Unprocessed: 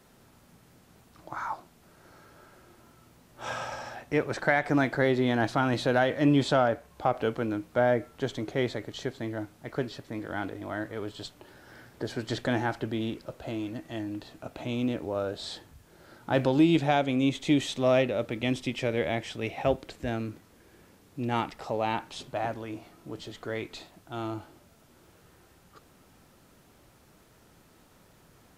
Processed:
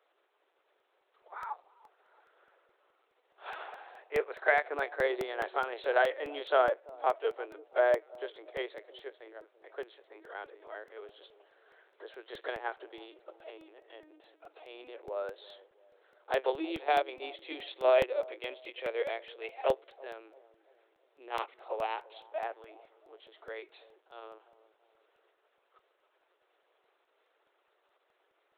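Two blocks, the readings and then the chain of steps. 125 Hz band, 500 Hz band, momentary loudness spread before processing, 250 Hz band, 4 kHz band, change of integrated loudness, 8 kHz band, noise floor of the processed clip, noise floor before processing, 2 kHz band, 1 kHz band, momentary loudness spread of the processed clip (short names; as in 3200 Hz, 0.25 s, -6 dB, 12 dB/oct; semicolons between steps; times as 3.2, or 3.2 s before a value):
under -25 dB, -3.0 dB, 15 LU, -19.5 dB, -8.0 dB, -4.0 dB, under -15 dB, -75 dBFS, -59 dBFS, -3.5 dB, -3.0 dB, 22 LU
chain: LPC vocoder at 8 kHz pitch kept; steep high-pass 380 Hz 48 dB/oct; analogue delay 0.336 s, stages 2048, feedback 42%, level -15 dB; crackling interface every 0.21 s, samples 64, repeat, from 0.59; upward expander 1.5:1, over -41 dBFS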